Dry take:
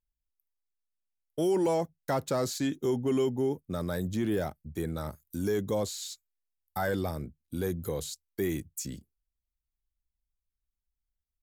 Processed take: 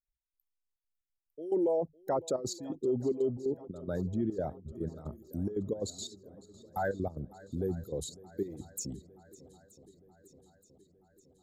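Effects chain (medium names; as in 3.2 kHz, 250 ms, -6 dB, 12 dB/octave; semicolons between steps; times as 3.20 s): resonances exaggerated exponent 2; trance gate ".x..xxxxx.xx.x" 178 bpm -12 dB; on a send: shuffle delay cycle 925 ms, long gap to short 1.5:1, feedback 58%, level -21 dB; on the sum: trim -1.5 dB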